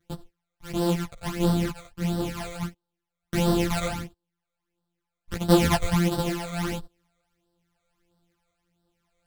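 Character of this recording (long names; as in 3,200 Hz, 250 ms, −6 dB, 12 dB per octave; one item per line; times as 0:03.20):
a buzz of ramps at a fixed pitch in blocks of 256 samples
phaser sweep stages 12, 1.5 Hz, lowest notch 280–2,300 Hz
tremolo triangle 0.89 Hz, depth 35%
a shimmering, thickened sound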